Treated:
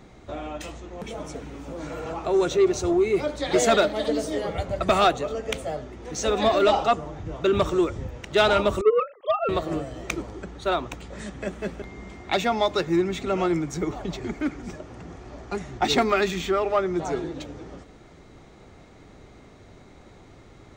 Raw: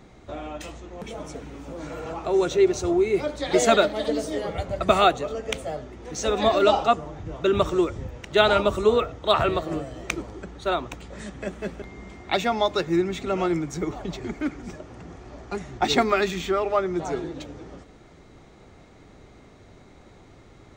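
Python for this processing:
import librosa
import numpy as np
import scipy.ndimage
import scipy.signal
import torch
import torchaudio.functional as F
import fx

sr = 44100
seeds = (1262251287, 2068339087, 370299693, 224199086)

y = fx.sine_speech(x, sr, at=(8.81, 9.49))
y = 10.0 ** (-12.0 / 20.0) * np.tanh(y / 10.0 ** (-12.0 / 20.0))
y = y * librosa.db_to_amplitude(1.0)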